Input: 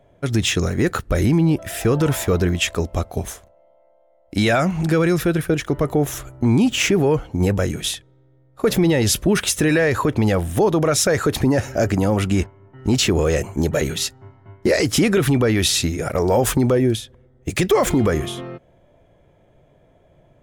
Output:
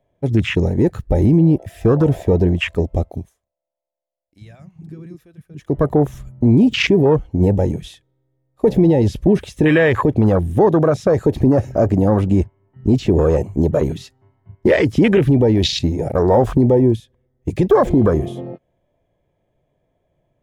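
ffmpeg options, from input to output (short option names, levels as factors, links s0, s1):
-filter_complex "[0:a]asplit=3[s0][s1][s2];[s0]atrim=end=3.3,asetpts=PTS-STARTPTS,afade=t=out:st=3.06:d=0.24:silence=0.125893[s3];[s1]atrim=start=3.3:end=5.53,asetpts=PTS-STARTPTS,volume=0.126[s4];[s2]atrim=start=5.53,asetpts=PTS-STARTPTS,afade=t=in:d=0.24:silence=0.125893[s5];[s3][s4][s5]concat=n=3:v=0:a=1,acrossover=split=5000[s6][s7];[s7]acompressor=threshold=0.02:ratio=4:attack=1:release=60[s8];[s6][s8]amix=inputs=2:normalize=0,bandreject=f=1400:w=7.6,afwtdn=0.0708,volume=1.58"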